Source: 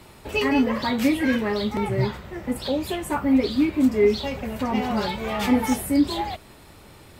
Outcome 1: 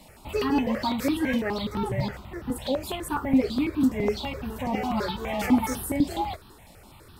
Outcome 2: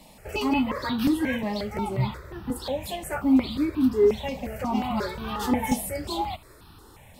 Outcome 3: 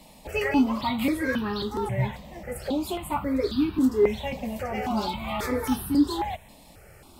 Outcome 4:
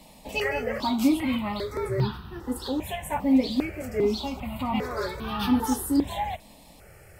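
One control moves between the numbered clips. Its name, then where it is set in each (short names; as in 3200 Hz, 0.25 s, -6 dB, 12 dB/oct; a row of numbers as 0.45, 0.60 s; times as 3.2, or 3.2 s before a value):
step phaser, rate: 12, 5.6, 3.7, 2.5 Hz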